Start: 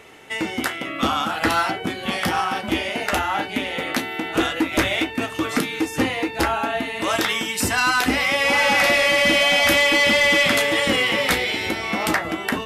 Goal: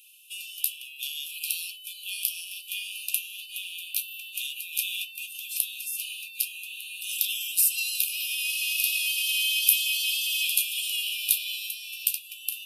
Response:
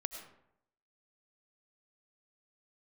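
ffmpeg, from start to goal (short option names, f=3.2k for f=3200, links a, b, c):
-af "aexciter=amount=9:drive=2.6:freq=9.6k,afftfilt=real='re*(1-between(b*sr/4096,490,2400))':imag='im*(1-between(b*sr/4096,490,2400))':win_size=4096:overlap=0.75,afftfilt=real='re*gte(b*sr/1024,740*pow(2300/740,0.5+0.5*sin(2*PI*3.6*pts/sr)))':imag='im*gte(b*sr/1024,740*pow(2300/740,0.5+0.5*sin(2*PI*3.6*pts/sr)))':win_size=1024:overlap=0.75,volume=-5.5dB"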